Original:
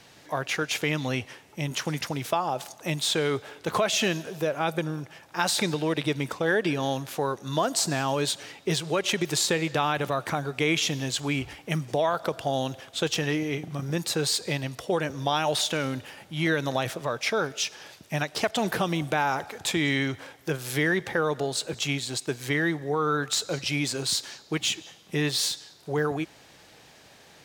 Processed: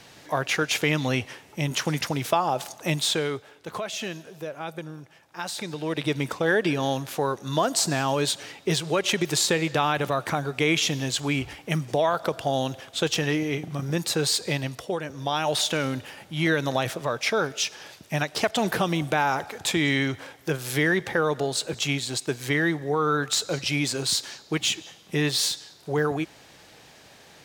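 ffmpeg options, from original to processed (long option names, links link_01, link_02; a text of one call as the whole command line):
ffmpeg -i in.wav -af "volume=20dB,afade=type=out:start_time=2.94:duration=0.52:silence=0.281838,afade=type=in:start_time=5.68:duration=0.49:silence=0.334965,afade=type=out:start_time=14.67:duration=0.35:silence=0.446684,afade=type=in:start_time=15.02:duration=0.64:silence=0.446684" out.wav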